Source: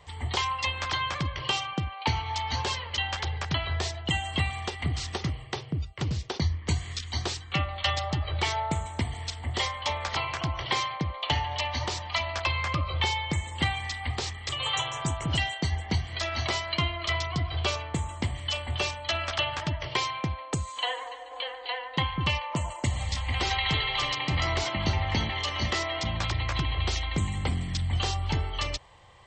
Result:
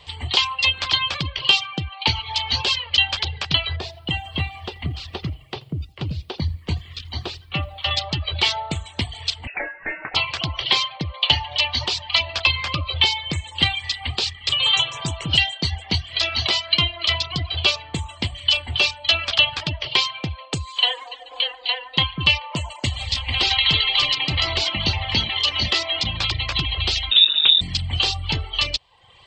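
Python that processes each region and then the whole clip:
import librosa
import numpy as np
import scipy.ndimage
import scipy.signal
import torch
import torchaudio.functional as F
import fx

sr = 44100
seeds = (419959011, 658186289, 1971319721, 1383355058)

y = fx.chain(x, sr, fx.lowpass(hz=1100.0, slope=6),
    fx.echo_crushed(ms=83, feedback_pct=35, bits=9, wet_db=-13.5), at=(3.76, 7.91))
y = fx.chain(y, sr, fx.highpass(hz=310.0, slope=12),
    fx.freq_invert(carrier_hz=2700), at=(9.47, 10.15))
y = fx.chain(y, sr, fx.self_delay(depth_ms=0.81),
    fx.freq_invert(carrier_hz=3700), at=(27.11, 27.61))
y = fx.dereverb_blind(y, sr, rt60_s=0.67)
y = fx.band_shelf(y, sr, hz=3500.0, db=11.0, octaves=1.2)
y = F.gain(torch.from_numpy(y), 3.0).numpy()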